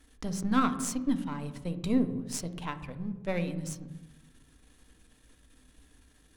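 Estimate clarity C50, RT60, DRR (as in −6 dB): 12.0 dB, 1.1 s, 8.0 dB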